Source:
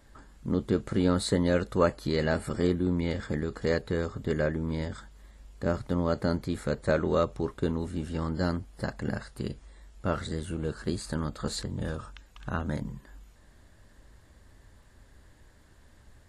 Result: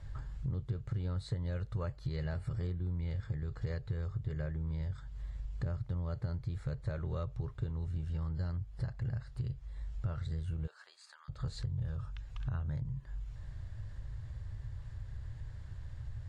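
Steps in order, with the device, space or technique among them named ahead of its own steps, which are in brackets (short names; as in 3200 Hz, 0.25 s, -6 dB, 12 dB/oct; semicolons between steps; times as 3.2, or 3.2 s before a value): jukebox (LPF 5900 Hz 12 dB/oct; resonant low shelf 170 Hz +12 dB, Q 3; compressor 4:1, threshold -37 dBFS, peak gain reduction 21.5 dB); 10.66–11.28 HPF 580 Hz -> 1200 Hz 24 dB/oct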